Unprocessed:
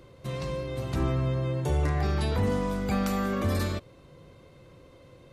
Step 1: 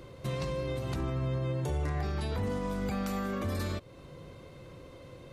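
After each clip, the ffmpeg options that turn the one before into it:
ffmpeg -i in.wav -af "alimiter=level_in=4.5dB:limit=-24dB:level=0:latency=1:release=245,volume=-4.5dB,volume=3.5dB" out.wav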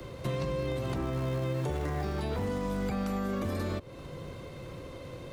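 ffmpeg -i in.wav -filter_complex "[0:a]acrossover=split=140|1200[link_01][link_02][link_03];[link_01]acrusher=bits=3:mode=log:mix=0:aa=0.000001[link_04];[link_04][link_02][link_03]amix=inputs=3:normalize=0,acrossover=split=180|480|970|3200[link_05][link_06][link_07][link_08][link_09];[link_05]acompressor=threshold=-42dB:ratio=4[link_10];[link_06]acompressor=threshold=-41dB:ratio=4[link_11];[link_07]acompressor=threshold=-47dB:ratio=4[link_12];[link_08]acompressor=threshold=-52dB:ratio=4[link_13];[link_09]acompressor=threshold=-59dB:ratio=4[link_14];[link_10][link_11][link_12][link_13][link_14]amix=inputs=5:normalize=0,volume=6dB" out.wav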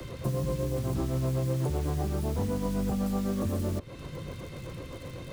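ffmpeg -i in.wav -filter_complex "[0:a]acrossover=split=300|1300|6600[link_01][link_02][link_03][link_04];[link_02]tremolo=f=7.9:d=0.9[link_05];[link_03]aeval=exprs='(mod(266*val(0)+1,2)-1)/266':channel_layout=same[link_06];[link_01][link_05][link_06][link_04]amix=inputs=4:normalize=0,volume=4dB" out.wav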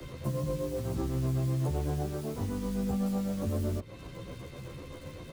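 ffmpeg -i in.wav -filter_complex "[0:a]asplit=2[link_01][link_02];[link_02]adelay=12,afreqshift=0.65[link_03];[link_01][link_03]amix=inputs=2:normalize=1" out.wav

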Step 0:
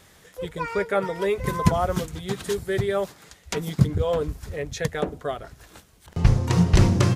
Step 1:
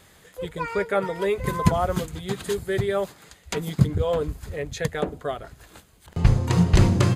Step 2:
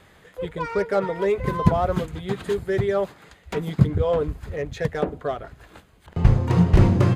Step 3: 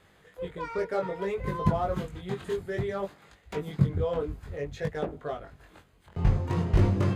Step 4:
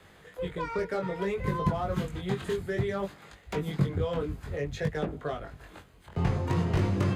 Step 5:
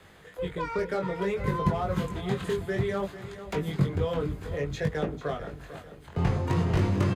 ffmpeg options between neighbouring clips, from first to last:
ffmpeg -i in.wav -af "bandreject=frequency=5600:width=7.8" out.wav
ffmpeg -i in.wav -filter_complex "[0:a]bass=frequency=250:gain=-1,treble=frequency=4000:gain=-12,acrossover=split=980[link_01][link_02];[link_02]asoftclip=type=tanh:threshold=-33dB[link_03];[link_01][link_03]amix=inputs=2:normalize=0,volume=2.5dB" out.wav
ffmpeg -i in.wav -af "flanger=delay=19.5:depth=3.3:speed=0.59,volume=-4dB" out.wav
ffmpeg -i in.wav -filter_complex "[0:a]acrossover=split=81|290|1200[link_01][link_02][link_03][link_04];[link_01]acompressor=threshold=-46dB:ratio=4[link_05];[link_02]acompressor=threshold=-31dB:ratio=4[link_06];[link_03]acompressor=threshold=-39dB:ratio=4[link_07];[link_04]acompressor=threshold=-44dB:ratio=4[link_08];[link_05][link_06][link_07][link_08]amix=inputs=4:normalize=0,volume=5dB" out.wav
ffmpeg -i in.wav -af "aecho=1:1:446|892|1338|1784|2230:0.211|0.0993|0.0467|0.0219|0.0103,volume=1.5dB" out.wav

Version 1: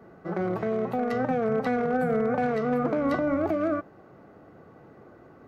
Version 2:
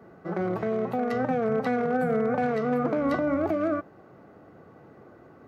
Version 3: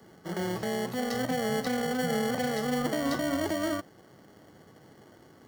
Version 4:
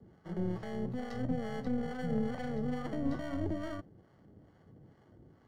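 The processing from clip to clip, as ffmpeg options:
ffmpeg -i in.wav -af "highpass=49" out.wav
ffmpeg -i in.wav -filter_complex "[0:a]highshelf=frequency=3600:width_type=q:width=1.5:gain=11.5,acrossover=split=300|820|2000[link_01][link_02][link_03][link_04];[link_02]acrusher=samples=35:mix=1:aa=0.000001[link_05];[link_01][link_05][link_03][link_04]amix=inputs=4:normalize=0,volume=-2.5dB" out.wav
ffmpeg -i in.wav -filter_complex "[0:a]acrossover=split=620[link_01][link_02];[link_01]aeval=exprs='val(0)*(1-0.7/2+0.7/2*cos(2*PI*2.3*n/s))':channel_layout=same[link_03];[link_02]aeval=exprs='val(0)*(1-0.7/2-0.7/2*cos(2*PI*2.3*n/s))':channel_layout=same[link_04];[link_03][link_04]amix=inputs=2:normalize=0,aeval=exprs='0.106*(cos(1*acos(clip(val(0)/0.106,-1,1)))-cos(1*PI/2))+0.0188*(cos(2*acos(clip(val(0)/0.106,-1,1)))-cos(2*PI/2))+0.0106*(cos(4*acos(clip(val(0)/0.106,-1,1)))-cos(4*PI/2))':channel_layout=same,aemphasis=mode=reproduction:type=riaa,volume=-8dB" out.wav

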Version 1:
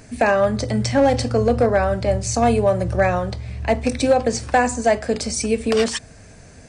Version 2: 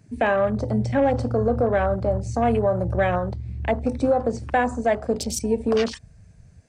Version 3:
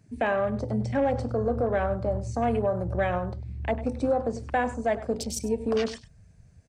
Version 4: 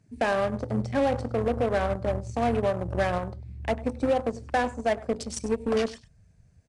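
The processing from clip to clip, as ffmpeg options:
ffmpeg -i in.wav -af "afwtdn=0.0355,alimiter=limit=-10.5dB:level=0:latency=1:release=94,volume=-1.5dB" out.wav
ffmpeg -i in.wav -filter_complex "[0:a]asplit=2[link_01][link_02];[link_02]adelay=99.13,volume=-15dB,highshelf=frequency=4000:gain=-2.23[link_03];[link_01][link_03]amix=inputs=2:normalize=0,volume=-5dB" out.wav
ffmpeg -i in.wav -filter_complex "[0:a]asplit=2[link_01][link_02];[link_02]acrusher=bits=3:mix=0:aa=0.5,volume=-4dB[link_03];[link_01][link_03]amix=inputs=2:normalize=0,volume=-4dB" -ar 22050 -c:a adpcm_ima_wav out.wav

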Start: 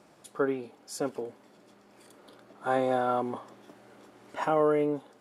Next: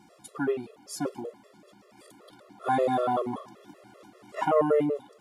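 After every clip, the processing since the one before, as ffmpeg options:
ffmpeg -i in.wav -af "bandreject=frequency=1600:width=11,afftfilt=real='re*gt(sin(2*PI*5.2*pts/sr)*(1-2*mod(floor(b*sr/1024/350),2)),0)':imag='im*gt(sin(2*PI*5.2*pts/sr)*(1-2*mod(floor(b*sr/1024/350),2)),0)':win_size=1024:overlap=0.75,volume=5dB" out.wav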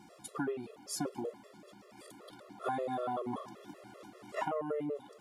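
ffmpeg -i in.wav -af "acompressor=threshold=-32dB:ratio=16" out.wav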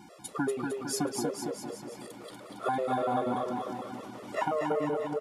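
ffmpeg -i in.wav -filter_complex "[0:a]asplit=2[link_01][link_02];[link_02]aecho=0:1:240|456|650.4|825.4|982.8:0.631|0.398|0.251|0.158|0.1[link_03];[link_01][link_03]amix=inputs=2:normalize=0,aresample=32000,aresample=44100,volume=5dB" out.wav

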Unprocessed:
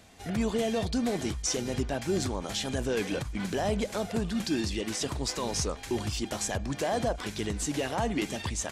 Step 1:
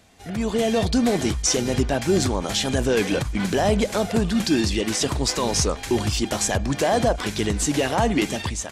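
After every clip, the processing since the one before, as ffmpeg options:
ffmpeg -i in.wav -af "dynaudnorm=framelen=210:gausssize=5:maxgain=9dB" out.wav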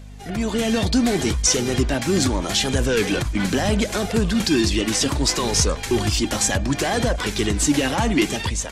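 ffmpeg -i in.wav -filter_complex "[0:a]flanger=delay=1.8:depth=2.1:regen=58:speed=0.7:shape=triangular,acrossover=split=360|1100[link_01][link_02][link_03];[link_02]asoftclip=type=tanh:threshold=-35dB[link_04];[link_01][link_04][link_03]amix=inputs=3:normalize=0,aeval=exprs='val(0)+0.00562*(sin(2*PI*50*n/s)+sin(2*PI*2*50*n/s)/2+sin(2*PI*3*50*n/s)/3+sin(2*PI*4*50*n/s)/4+sin(2*PI*5*50*n/s)/5)':channel_layout=same,volume=7.5dB" out.wav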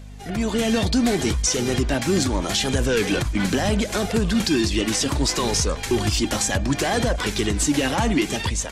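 ffmpeg -i in.wav -af "alimiter=limit=-11dB:level=0:latency=1:release=121" out.wav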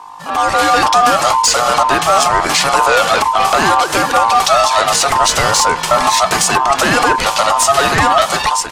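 ffmpeg -i in.wav -af "dynaudnorm=framelen=190:gausssize=3:maxgain=6dB,aeval=exprs='val(0)*sin(2*PI*970*n/s)':channel_layout=same,asoftclip=type=tanh:threshold=-8.5dB,volume=7.5dB" out.wav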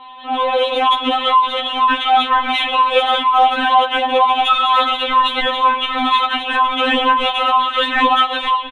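ffmpeg -i in.wav -af "aresample=8000,acrusher=bits=6:mix=0:aa=0.000001,aresample=44100,aexciter=amount=2.2:drive=6.5:freq=2700,afftfilt=real='re*3.46*eq(mod(b,12),0)':imag='im*3.46*eq(mod(b,12),0)':win_size=2048:overlap=0.75,volume=-2dB" out.wav

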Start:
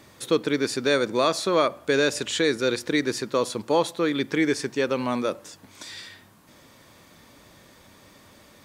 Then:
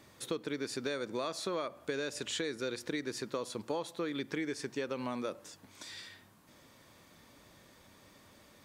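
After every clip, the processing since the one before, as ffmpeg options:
ffmpeg -i in.wav -af "acompressor=threshold=-25dB:ratio=6,volume=-7.5dB" out.wav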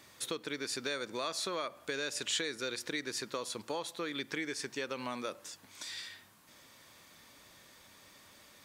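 ffmpeg -i in.wav -af "tiltshelf=frequency=890:gain=-5" out.wav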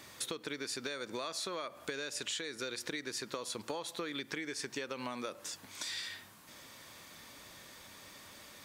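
ffmpeg -i in.wav -af "acompressor=threshold=-41dB:ratio=6,volume=5dB" out.wav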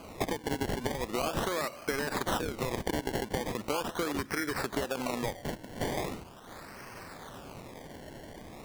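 ffmpeg -i in.wav -af "acrusher=samples=24:mix=1:aa=0.000001:lfo=1:lforange=24:lforate=0.4,volume=7.5dB" out.wav

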